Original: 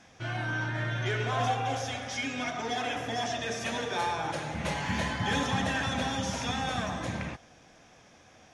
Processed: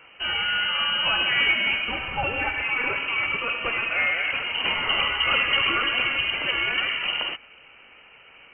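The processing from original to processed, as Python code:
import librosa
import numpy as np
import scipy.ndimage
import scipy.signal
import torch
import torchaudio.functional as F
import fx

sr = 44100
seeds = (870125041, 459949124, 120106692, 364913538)

y = fx.freq_invert(x, sr, carrier_hz=3000)
y = fx.low_shelf(y, sr, hz=240.0, db=10.0, at=(1.88, 2.63))
y = y * 10.0 ** (7.0 / 20.0)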